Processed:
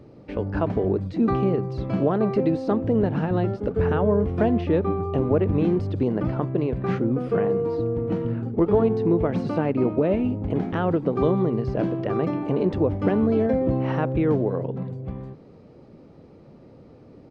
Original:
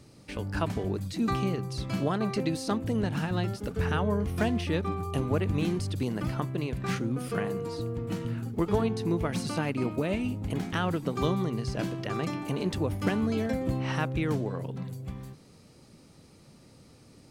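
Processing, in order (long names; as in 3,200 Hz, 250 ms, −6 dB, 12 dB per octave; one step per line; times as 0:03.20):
parametric band 480 Hz +8.5 dB 1.8 octaves
in parallel at −0.5 dB: brickwall limiter −15.5 dBFS, peak gain reduction 7.5 dB
on the sum: head-to-tape spacing loss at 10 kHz 34 dB
far-end echo of a speakerphone 80 ms, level −30 dB
level −1.5 dB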